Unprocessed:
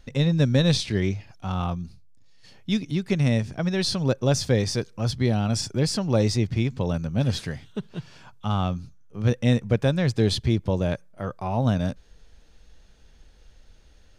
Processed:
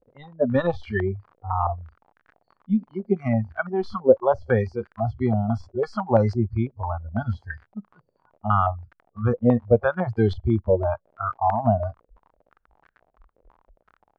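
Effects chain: spectral noise reduction 28 dB; crackle 49 per s -38 dBFS; step-sequenced low-pass 6 Hz 510–1600 Hz; trim +2 dB

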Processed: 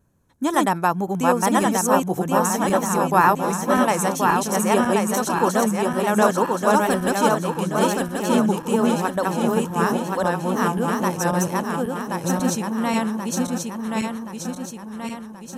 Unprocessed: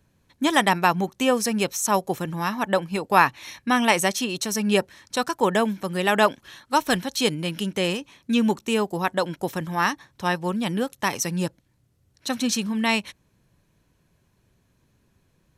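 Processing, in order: backward echo that repeats 539 ms, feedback 71%, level -0.5 dB; vibrato 2.2 Hz 43 cents; high-order bell 3.1 kHz -10 dB

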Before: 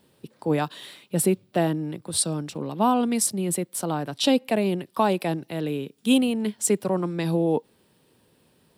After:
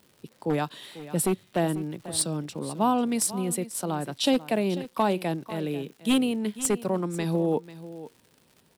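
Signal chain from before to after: one-sided wavefolder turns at -14.5 dBFS; crackle 170 per s -41 dBFS; on a send: delay 493 ms -15.5 dB; on the sum: trim -2.5 dB

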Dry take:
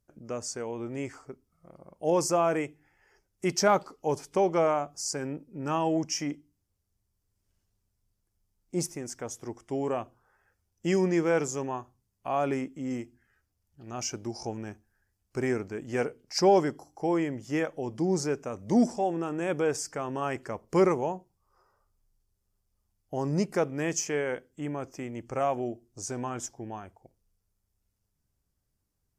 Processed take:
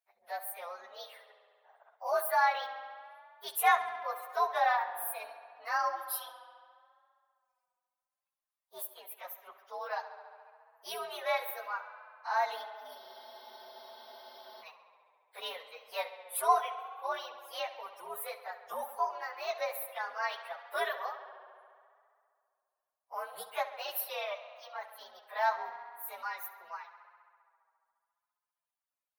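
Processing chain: frequency axis rescaled in octaves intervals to 123%; inverse Chebyshev high-pass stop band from 330 Hz, stop band 40 dB; reverb removal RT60 1.8 s; tape echo 68 ms, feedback 84%, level -13 dB, low-pass 5.9 kHz; spectral freeze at 13.00 s, 1.62 s; trim +1.5 dB

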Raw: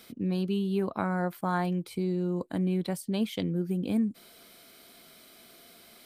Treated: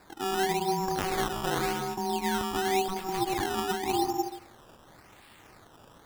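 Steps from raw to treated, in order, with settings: plate-style reverb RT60 0.7 s, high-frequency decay 0.9×, pre-delay 110 ms, DRR 2.5 dB; ring modulator 570 Hz; decimation with a swept rate 14×, swing 100% 0.9 Hz; trim +1 dB

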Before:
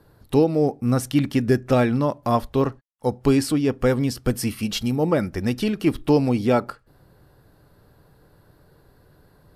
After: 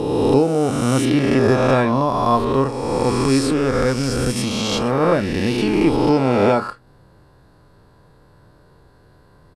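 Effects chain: reverse spectral sustain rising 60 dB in 2.08 s; low-pass 9.7 kHz 24 dB/octave; peaking EQ 1 kHz +5 dB 0.26 oct; 3.12–5.01 s: transient shaper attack -9 dB, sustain -5 dB; doubling 30 ms -13 dB

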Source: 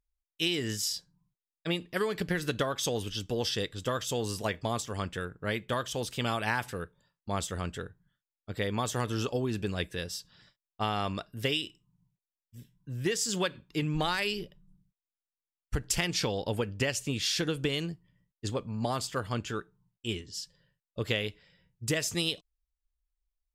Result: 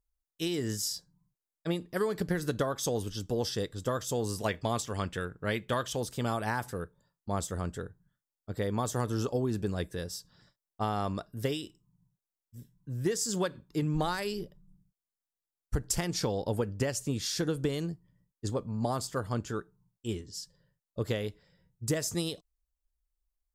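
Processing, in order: peaking EQ 2.7 kHz -12 dB 1.2 oct, from 4.40 s -2.5 dB, from 5.96 s -13 dB; trim +1 dB

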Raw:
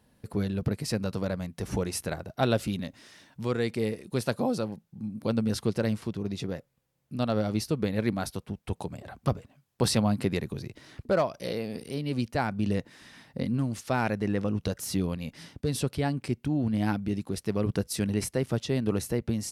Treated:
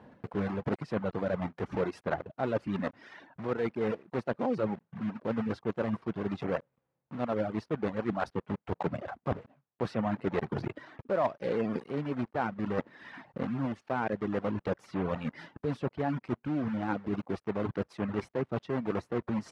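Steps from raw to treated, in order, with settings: block-companded coder 3-bit; reverb removal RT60 0.74 s; reverse; compression 10:1, threshold -39 dBFS, peak gain reduction 19.5 dB; reverse; low-pass 1.4 kHz 12 dB/octave; in parallel at -0.5 dB: gain riding 2 s; on the sum: high-pass 260 Hz 6 dB/octave; trim +8.5 dB

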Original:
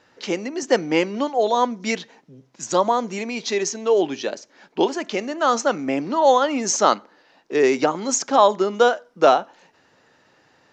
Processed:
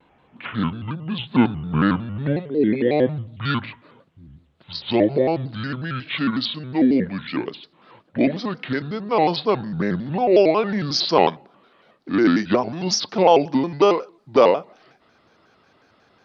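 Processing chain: gliding tape speed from 51% -> 81%; vibrato with a chosen wave square 5.5 Hz, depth 160 cents

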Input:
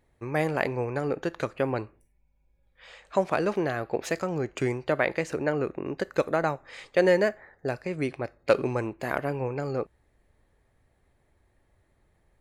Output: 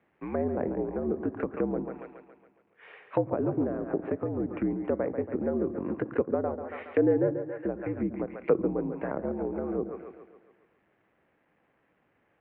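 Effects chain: companded quantiser 6-bit; on a send: two-band feedback delay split 340 Hz, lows 101 ms, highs 139 ms, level -9 dB; on the sum: low-pass that closes with the level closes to 610 Hz, closed at -25 dBFS; mistuned SSB -65 Hz 190–2700 Hz

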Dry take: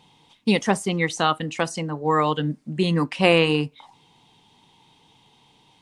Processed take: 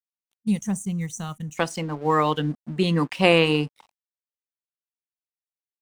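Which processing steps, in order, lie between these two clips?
crossover distortion -45.5 dBFS; time-frequency box 0.36–1.57 s, 220–5700 Hz -17 dB

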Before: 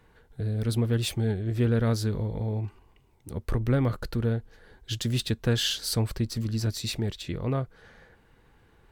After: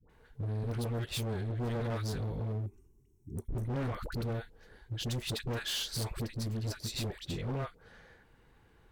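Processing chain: phase dispersion highs, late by 98 ms, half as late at 730 Hz; time-frequency box 2.52–3.65 s, 440–5300 Hz -21 dB; overload inside the chain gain 28.5 dB; trim -3.5 dB

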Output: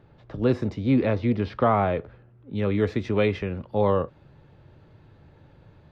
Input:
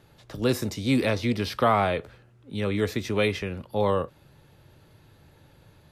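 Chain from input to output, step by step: tape spacing loss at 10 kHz 36 dB, from 0.74 s at 10 kHz 41 dB, from 2.55 s at 10 kHz 27 dB; trim +3.5 dB

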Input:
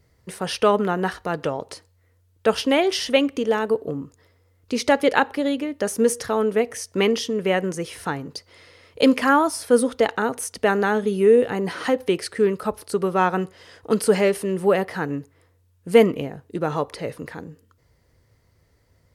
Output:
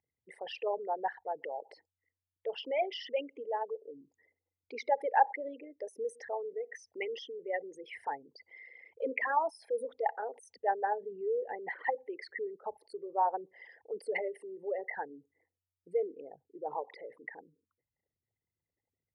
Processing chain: resonances exaggerated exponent 3; two resonant band-passes 1.3 kHz, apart 1.3 oct

